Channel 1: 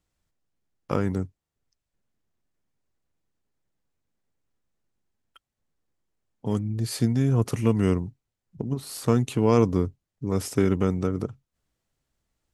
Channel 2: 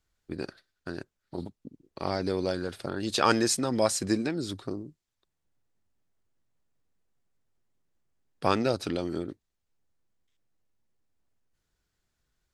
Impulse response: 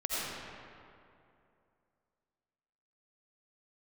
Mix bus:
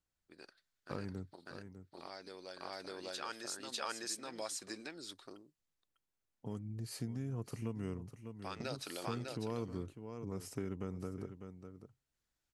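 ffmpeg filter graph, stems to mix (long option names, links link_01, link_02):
-filter_complex "[0:a]bandreject=frequency=3500:width=11,volume=-12.5dB,asplit=3[link_01][link_02][link_03];[link_02]volume=-14dB[link_04];[1:a]highpass=frequency=1200:poles=1,volume=-3.5dB,asplit=2[link_05][link_06];[link_06]volume=-4dB[link_07];[link_03]apad=whole_len=552840[link_08];[link_05][link_08]sidechaingate=range=-9dB:threshold=-53dB:ratio=16:detection=peak[link_09];[link_04][link_07]amix=inputs=2:normalize=0,aecho=0:1:600:1[link_10];[link_01][link_09][link_10]amix=inputs=3:normalize=0,acompressor=threshold=-41dB:ratio=2"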